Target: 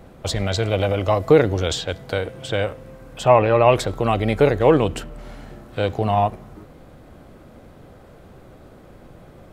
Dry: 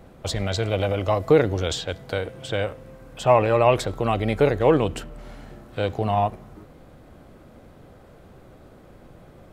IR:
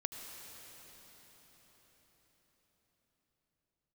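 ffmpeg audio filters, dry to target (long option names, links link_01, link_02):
-filter_complex "[0:a]asettb=1/sr,asplit=3[link_01][link_02][link_03];[link_01]atrim=end=3.284[link_04];[link_02]atrim=start=3.28:end=3.68,asetpts=PTS-STARTPTS,afade=type=in:duration=0.004:curve=qsin,afade=type=out:start_time=0.396:duration=0.004:curve=qsin,lowpass=4200[link_05];[link_03]atrim=start=3.676[link_06];[link_04][link_05]acrossfade=duration=0.004:curve1=hsin:curve2=qsin[link_07];[link_07][link_06]acrossfade=duration=0.004:curve1=qsin:curve2=hsin,volume=3dB"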